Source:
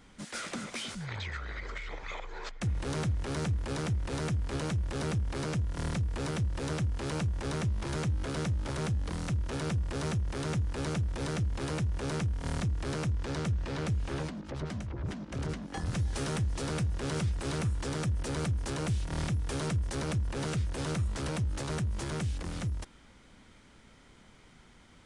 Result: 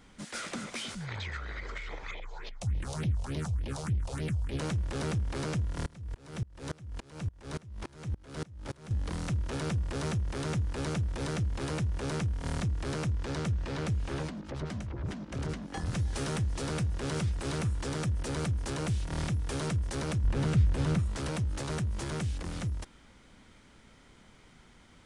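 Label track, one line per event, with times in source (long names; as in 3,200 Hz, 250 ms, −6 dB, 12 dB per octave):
2.110000	4.590000	all-pass phaser stages 4, 3.4 Hz, lowest notch 270–1,400 Hz
5.860000	8.910000	tremolo with a ramp in dB swelling 3.5 Hz, depth 28 dB
20.240000	20.990000	bass and treble bass +8 dB, treble −5 dB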